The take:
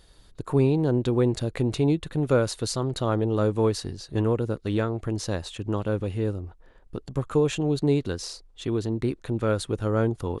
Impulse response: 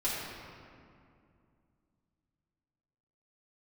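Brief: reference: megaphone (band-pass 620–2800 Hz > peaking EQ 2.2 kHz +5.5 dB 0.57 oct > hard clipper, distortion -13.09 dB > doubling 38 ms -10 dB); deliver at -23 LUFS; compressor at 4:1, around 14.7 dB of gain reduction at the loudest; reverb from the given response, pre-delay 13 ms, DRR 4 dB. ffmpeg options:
-filter_complex "[0:a]acompressor=threshold=0.0178:ratio=4,asplit=2[s0][s1];[1:a]atrim=start_sample=2205,adelay=13[s2];[s1][s2]afir=irnorm=-1:irlink=0,volume=0.266[s3];[s0][s3]amix=inputs=2:normalize=0,highpass=620,lowpass=2800,equalizer=f=2200:t=o:w=0.57:g=5.5,asoftclip=type=hard:threshold=0.0126,asplit=2[s4][s5];[s5]adelay=38,volume=0.316[s6];[s4][s6]amix=inputs=2:normalize=0,volume=13.3"

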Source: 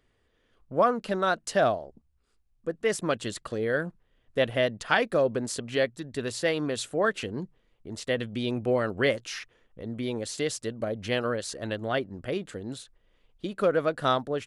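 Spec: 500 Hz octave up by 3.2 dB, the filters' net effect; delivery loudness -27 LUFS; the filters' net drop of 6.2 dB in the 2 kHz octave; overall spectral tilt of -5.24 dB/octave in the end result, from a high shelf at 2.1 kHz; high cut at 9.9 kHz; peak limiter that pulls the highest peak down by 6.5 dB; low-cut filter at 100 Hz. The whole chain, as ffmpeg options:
-af "highpass=100,lowpass=9900,equalizer=f=500:t=o:g=4.5,equalizer=f=2000:t=o:g=-4.5,highshelf=f=2100:g=-7.5,volume=1.19,alimiter=limit=0.2:level=0:latency=1"

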